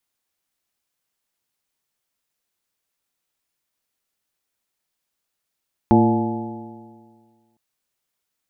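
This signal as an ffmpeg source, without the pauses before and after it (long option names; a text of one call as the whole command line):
ffmpeg -f lavfi -i "aevalsrc='0.126*pow(10,-3*t/1.77)*sin(2*PI*112.21*t)+0.251*pow(10,-3*t/1.77)*sin(2*PI*225.7*t)+0.188*pow(10,-3*t/1.77)*sin(2*PI*341.7*t)+0.0531*pow(10,-3*t/1.77)*sin(2*PI*461.42*t)+0.0562*pow(10,-3*t/1.77)*sin(2*PI*586*t)+0.0708*pow(10,-3*t/1.77)*sin(2*PI*716.49*t)+0.141*pow(10,-3*t/1.77)*sin(2*PI*853.88*t)':duration=1.66:sample_rate=44100" out.wav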